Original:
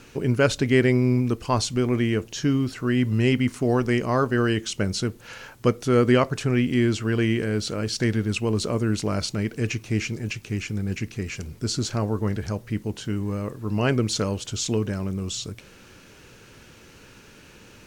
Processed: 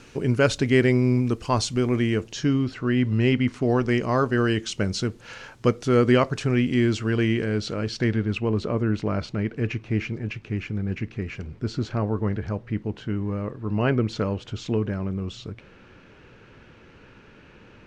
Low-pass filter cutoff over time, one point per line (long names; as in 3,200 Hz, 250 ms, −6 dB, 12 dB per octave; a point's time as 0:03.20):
0:02.13 8,900 Hz
0:02.73 4,100 Hz
0:03.45 4,100 Hz
0:04.19 6,900 Hz
0:06.92 6,900 Hz
0:07.81 4,300 Hz
0:08.52 2,500 Hz